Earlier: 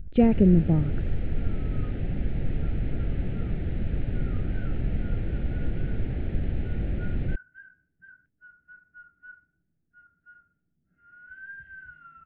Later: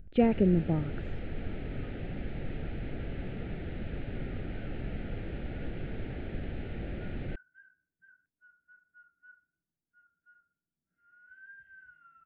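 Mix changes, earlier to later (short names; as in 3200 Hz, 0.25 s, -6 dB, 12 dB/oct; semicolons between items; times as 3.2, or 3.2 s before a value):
second sound -9.0 dB; master: add low shelf 240 Hz -11.5 dB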